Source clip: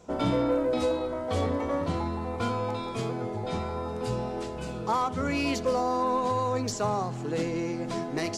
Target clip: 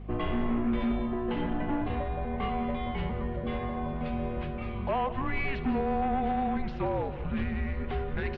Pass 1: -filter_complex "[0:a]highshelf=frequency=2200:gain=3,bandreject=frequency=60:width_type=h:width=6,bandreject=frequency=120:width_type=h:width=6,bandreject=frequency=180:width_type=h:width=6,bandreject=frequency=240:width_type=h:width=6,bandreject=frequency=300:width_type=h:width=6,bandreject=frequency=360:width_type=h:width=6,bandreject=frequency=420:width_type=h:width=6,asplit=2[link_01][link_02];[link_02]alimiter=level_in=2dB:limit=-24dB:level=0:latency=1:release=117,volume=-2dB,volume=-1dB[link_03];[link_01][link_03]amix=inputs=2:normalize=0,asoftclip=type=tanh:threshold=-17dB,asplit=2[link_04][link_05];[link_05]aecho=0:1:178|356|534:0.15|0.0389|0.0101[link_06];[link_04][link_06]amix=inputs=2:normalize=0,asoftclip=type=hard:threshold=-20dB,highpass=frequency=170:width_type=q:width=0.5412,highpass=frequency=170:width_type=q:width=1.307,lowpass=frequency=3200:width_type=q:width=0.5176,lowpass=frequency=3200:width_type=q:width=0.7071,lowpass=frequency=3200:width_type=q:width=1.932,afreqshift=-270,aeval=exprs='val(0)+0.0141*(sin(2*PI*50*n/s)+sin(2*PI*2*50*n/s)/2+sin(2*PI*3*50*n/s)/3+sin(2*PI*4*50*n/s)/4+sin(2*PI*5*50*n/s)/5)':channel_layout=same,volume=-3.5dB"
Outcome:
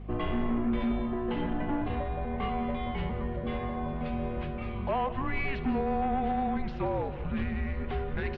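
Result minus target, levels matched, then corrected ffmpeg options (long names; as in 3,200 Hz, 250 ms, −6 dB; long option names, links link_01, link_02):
soft clipping: distortion +16 dB
-filter_complex "[0:a]highshelf=frequency=2200:gain=3,bandreject=frequency=60:width_type=h:width=6,bandreject=frequency=120:width_type=h:width=6,bandreject=frequency=180:width_type=h:width=6,bandreject=frequency=240:width_type=h:width=6,bandreject=frequency=300:width_type=h:width=6,bandreject=frequency=360:width_type=h:width=6,bandreject=frequency=420:width_type=h:width=6,asplit=2[link_01][link_02];[link_02]alimiter=level_in=2dB:limit=-24dB:level=0:latency=1:release=117,volume=-2dB,volume=-1dB[link_03];[link_01][link_03]amix=inputs=2:normalize=0,asoftclip=type=tanh:threshold=-8dB,asplit=2[link_04][link_05];[link_05]aecho=0:1:178|356|534:0.15|0.0389|0.0101[link_06];[link_04][link_06]amix=inputs=2:normalize=0,asoftclip=type=hard:threshold=-20dB,highpass=frequency=170:width_type=q:width=0.5412,highpass=frequency=170:width_type=q:width=1.307,lowpass=frequency=3200:width_type=q:width=0.5176,lowpass=frequency=3200:width_type=q:width=0.7071,lowpass=frequency=3200:width_type=q:width=1.932,afreqshift=-270,aeval=exprs='val(0)+0.0141*(sin(2*PI*50*n/s)+sin(2*PI*2*50*n/s)/2+sin(2*PI*3*50*n/s)/3+sin(2*PI*4*50*n/s)/4+sin(2*PI*5*50*n/s)/5)':channel_layout=same,volume=-3.5dB"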